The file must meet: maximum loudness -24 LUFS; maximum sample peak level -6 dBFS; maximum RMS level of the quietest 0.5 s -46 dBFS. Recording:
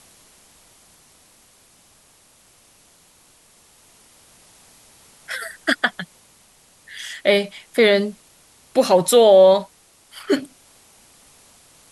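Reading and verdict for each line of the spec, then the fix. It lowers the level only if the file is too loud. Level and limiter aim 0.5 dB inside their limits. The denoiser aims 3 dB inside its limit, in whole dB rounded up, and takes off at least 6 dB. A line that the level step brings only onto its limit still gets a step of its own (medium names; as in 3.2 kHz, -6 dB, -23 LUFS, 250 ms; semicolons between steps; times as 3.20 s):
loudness -17.5 LUFS: fail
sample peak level -3.0 dBFS: fail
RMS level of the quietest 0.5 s -54 dBFS: pass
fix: trim -7 dB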